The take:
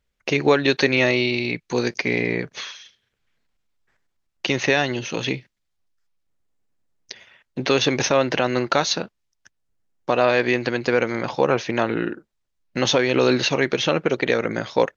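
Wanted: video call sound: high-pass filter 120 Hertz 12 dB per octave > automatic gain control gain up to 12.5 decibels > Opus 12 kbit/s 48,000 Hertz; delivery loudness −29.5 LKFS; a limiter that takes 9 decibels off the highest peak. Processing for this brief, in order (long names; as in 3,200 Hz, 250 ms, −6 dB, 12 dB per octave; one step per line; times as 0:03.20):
brickwall limiter −12.5 dBFS
high-pass filter 120 Hz 12 dB per octave
automatic gain control gain up to 12.5 dB
level −4 dB
Opus 12 kbit/s 48,000 Hz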